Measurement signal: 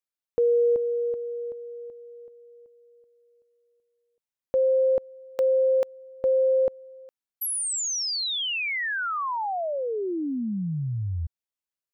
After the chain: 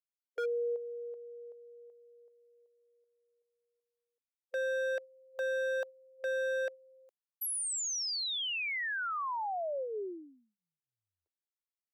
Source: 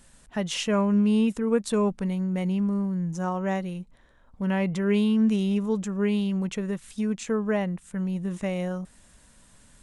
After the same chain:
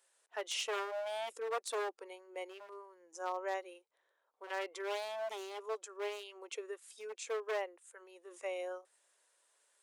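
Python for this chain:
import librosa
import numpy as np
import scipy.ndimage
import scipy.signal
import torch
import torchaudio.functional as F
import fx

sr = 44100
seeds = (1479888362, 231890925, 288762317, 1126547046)

y = fx.noise_reduce_blind(x, sr, reduce_db=8)
y = 10.0 ** (-21.5 / 20.0) * (np.abs((y / 10.0 ** (-21.5 / 20.0) + 3.0) % 4.0 - 2.0) - 1.0)
y = scipy.signal.sosfilt(scipy.signal.cheby2(6, 60, 200.0, 'highpass', fs=sr, output='sos'), y)
y = y * librosa.db_to_amplitude(-7.0)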